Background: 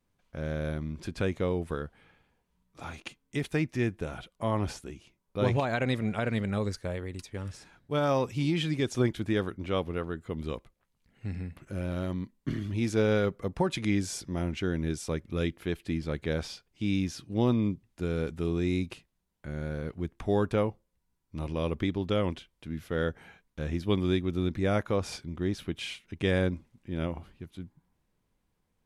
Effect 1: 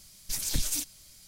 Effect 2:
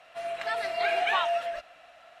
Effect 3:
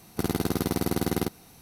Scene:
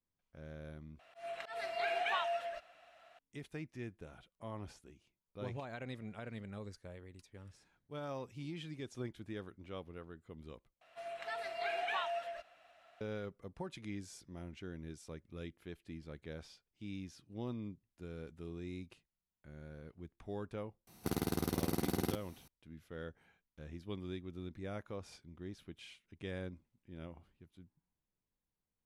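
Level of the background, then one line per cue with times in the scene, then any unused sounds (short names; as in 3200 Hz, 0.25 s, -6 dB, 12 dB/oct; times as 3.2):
background -16.5 dB
0.99 replace with 2 -9 dB + auto swell 0.144 s
10.81 replace with 2 -11 dB
20.87 add 3 -9 dB
not used: 1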